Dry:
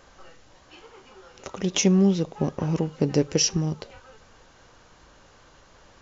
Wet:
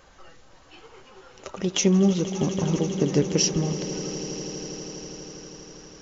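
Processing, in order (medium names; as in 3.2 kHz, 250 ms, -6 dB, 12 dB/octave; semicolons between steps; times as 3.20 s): coarse spectral quantiser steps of 15 dB; echo with a slow build-up 81 ms, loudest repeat 8, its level -17 dB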